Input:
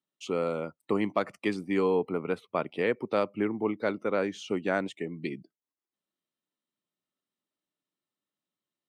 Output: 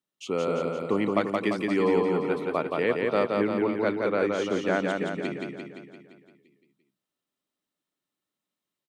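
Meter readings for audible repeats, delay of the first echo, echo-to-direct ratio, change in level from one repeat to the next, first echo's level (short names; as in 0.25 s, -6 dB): 7, 0.172 s, -1.0 dB, -4.5 dB, -3.0 dB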